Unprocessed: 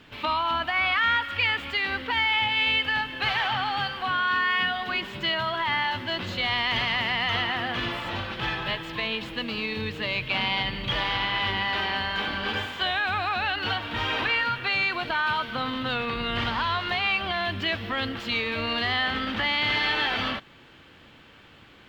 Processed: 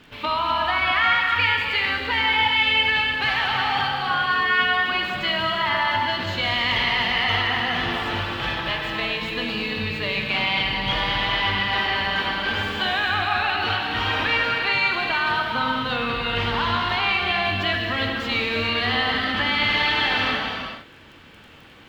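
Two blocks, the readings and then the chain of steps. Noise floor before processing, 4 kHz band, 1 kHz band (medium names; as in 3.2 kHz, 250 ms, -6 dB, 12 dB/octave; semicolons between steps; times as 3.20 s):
-52 dBFS, +4.0 dB, +4.5 dB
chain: crackle 22 per s -43 dBFS; gated-style reverb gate 470 ms flat, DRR 0 dB; trim +1.5 dB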